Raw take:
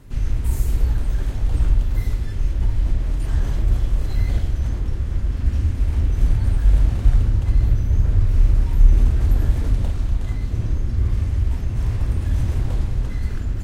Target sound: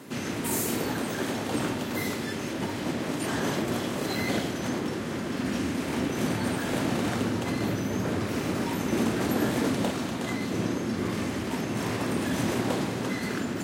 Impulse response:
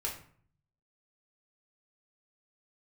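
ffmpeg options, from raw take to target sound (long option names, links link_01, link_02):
-af "highpass=frequency=200:width=0.5412,highpass=frequency=200:width=1.3066,volume=9dB"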